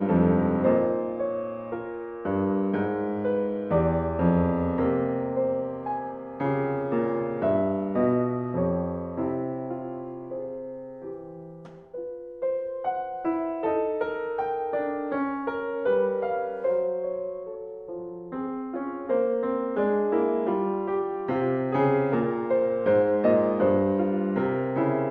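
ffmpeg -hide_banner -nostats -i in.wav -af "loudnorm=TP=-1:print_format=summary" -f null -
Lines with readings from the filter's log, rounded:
Input Integrated:    -26.1 LUFS
Input True Peak:      -9.4 dBTP
Input LRA:             6.2 LU
Input Threshold:     -36.5 LUFS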